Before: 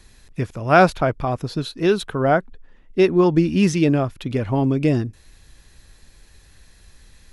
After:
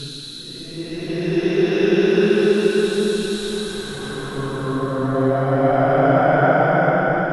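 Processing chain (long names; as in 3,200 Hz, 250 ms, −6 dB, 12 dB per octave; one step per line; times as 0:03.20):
extreme stretch with random phases 9.9×, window 0.25 s, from 0:01.68
feedback delay with all-pass diffusion 504 ms, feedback 49%, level −6.5 dB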